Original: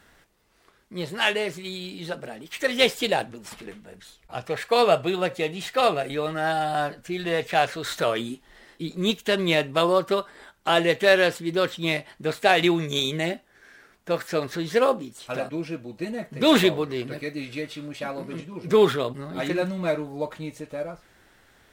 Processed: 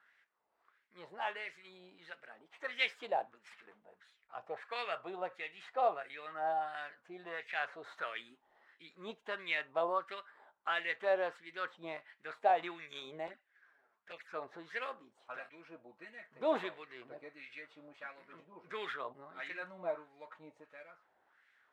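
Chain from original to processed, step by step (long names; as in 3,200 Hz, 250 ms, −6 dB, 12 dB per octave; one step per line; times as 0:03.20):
LFO wah 1.5 Hz 740–2,100 Hz, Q 2.4
0:13.27–0:14.34: flanger swept by the level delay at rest 11 ms, full sweep at −36 dBFS
level −7 dB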